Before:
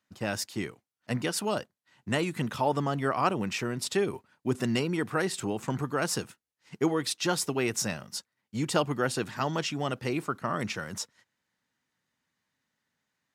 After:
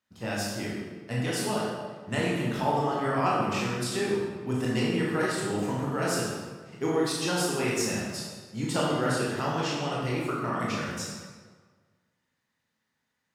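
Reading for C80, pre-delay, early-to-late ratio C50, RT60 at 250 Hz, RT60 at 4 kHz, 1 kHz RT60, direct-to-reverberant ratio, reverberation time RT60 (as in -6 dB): 2.0 dB, 17 ms, -1.0 dB, 1.5 s, 1.0 s, 1.5 s, -5.5 dB, 1.5 s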